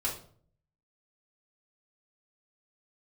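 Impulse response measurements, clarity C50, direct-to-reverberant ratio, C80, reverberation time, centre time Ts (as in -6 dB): 8.0 dB, -6.0 dB, 12.5 dB, 0.50 s, 24 ms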